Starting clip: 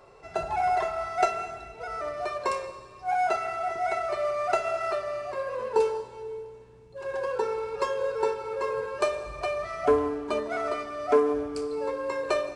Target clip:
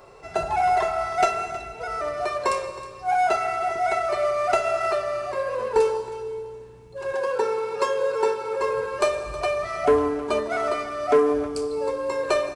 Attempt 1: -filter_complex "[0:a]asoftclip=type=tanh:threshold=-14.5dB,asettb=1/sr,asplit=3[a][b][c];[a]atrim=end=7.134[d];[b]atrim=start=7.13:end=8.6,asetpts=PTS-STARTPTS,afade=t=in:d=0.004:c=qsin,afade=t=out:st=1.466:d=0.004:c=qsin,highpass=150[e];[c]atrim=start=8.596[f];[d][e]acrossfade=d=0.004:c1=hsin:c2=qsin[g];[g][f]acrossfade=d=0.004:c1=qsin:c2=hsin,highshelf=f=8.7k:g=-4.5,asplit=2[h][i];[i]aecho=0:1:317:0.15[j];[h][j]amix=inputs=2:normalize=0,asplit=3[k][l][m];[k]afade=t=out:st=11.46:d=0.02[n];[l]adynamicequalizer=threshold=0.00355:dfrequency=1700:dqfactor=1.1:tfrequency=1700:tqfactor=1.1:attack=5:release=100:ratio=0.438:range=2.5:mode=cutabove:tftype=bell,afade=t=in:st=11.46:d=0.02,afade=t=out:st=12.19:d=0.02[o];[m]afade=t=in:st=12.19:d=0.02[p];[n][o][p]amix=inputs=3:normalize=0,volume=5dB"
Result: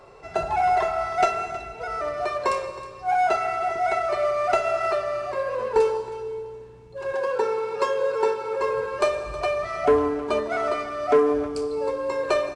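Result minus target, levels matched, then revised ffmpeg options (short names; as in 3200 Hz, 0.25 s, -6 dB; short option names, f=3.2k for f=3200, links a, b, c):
8000 Hz band -4.0 dB
-filter_complex "[0:a]asoftclip=type=tanh:threshold=-14.5dB,asettb=1/sr,asplit=3[a][b][c];[a]atrim=end=7.134[d];[b]atrim=start=7.13:end=8.6,asetpts=PTS-STARTPTS,afade=t=in:d=0.004:c=qsin,afade=t=out:st=1.466:d=0.004:c=qsin,highpass=150[e];[c]atrim=start=8.596[f];[d][e]acrossfade=d=0.004:c1=hsin:c2=qsin[g];[g][f]acrossfade=d=0.004:c1=qsin:c2=hsin,highshelf=f=8.7k:g=6.5,asplit=2[h][i];[i]aecho=0:1:317:0.15[j];[h][j]amix=inputs=2:normalize=0,asplit=3[k][l][m];[k]afade=t=out:st=11.46:d=0.02[n];[l]adynamicequalizer=threshold=0.00355:dfrequency=1700:dqfactor=1.1:tfrequency=1700:tqfactor=1.1:attack=5:release=100:ratio=0.438:range=2.5:mode=cutabove:tftype=bell,afade=t=in:st=11.46:d=0.02,afade=t=out:st=12.19:d=0.02[o];[m]afade=t=in:st=12.19:d=0.02[p];[n][o][p]amix=inputs=3:normalize=0,volume=5dB"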